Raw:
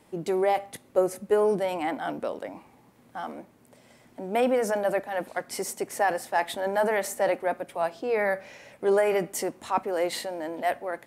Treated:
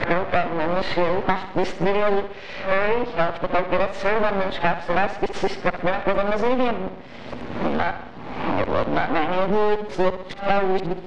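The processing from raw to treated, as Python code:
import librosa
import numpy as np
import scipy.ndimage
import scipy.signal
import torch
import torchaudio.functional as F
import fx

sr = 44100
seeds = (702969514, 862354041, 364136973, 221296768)

p1 = x[::-1].copy()
p2 = fx.echo_feedback(p1, sr, ms=64, feedback_pct=46, wet_db=-12.0)
p3 = np.maximum(p2, 0.0)
p4 = fx.rider(p3, sr, range_db=10, speed_s=0.5)
p5 = p3 + F.gain(torch.from_numpy(p4), -2.0).numpy()
p6 = scipy.signal.sosfilt(scipy.signal.butter(4, 4200.0, 'lowpass', fs=sr, output='sos'), p5)
p7 = fx.band_squash(p6, sr, depth_pct=100)
y = F.gain(torch.from_numpy(p7), 3.5).numpy()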